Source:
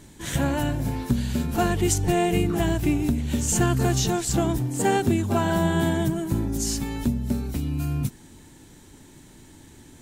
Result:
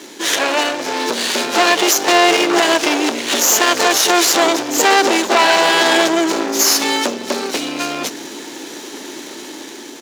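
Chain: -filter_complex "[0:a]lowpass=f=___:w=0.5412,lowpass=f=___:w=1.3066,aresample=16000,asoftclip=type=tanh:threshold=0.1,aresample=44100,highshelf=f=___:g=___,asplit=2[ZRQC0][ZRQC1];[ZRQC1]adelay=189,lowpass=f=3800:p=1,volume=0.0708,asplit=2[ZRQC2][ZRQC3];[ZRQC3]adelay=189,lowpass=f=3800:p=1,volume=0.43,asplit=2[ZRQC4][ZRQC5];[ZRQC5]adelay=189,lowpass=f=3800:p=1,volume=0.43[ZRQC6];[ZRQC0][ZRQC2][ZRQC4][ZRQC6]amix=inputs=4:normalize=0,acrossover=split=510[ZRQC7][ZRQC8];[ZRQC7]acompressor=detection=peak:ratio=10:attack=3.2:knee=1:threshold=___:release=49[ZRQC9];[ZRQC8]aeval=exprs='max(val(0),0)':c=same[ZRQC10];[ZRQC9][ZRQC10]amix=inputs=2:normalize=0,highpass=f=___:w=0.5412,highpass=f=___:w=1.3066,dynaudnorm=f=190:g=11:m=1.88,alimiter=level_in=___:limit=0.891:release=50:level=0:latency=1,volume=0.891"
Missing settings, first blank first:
6300, 6300, 3300, 7.5, 0.0141, 340, 340, 11.2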